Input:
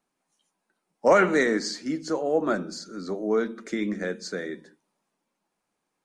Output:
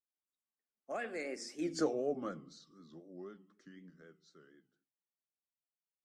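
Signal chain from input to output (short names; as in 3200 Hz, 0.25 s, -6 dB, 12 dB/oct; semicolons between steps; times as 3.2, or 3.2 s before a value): Doppler pass-by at 1.78, 51 m/s, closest 5.7 m; vibrato 4 Hz 85 cents; Butterworth band-stop 960 Hz, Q 5.6; gain -3.5 dB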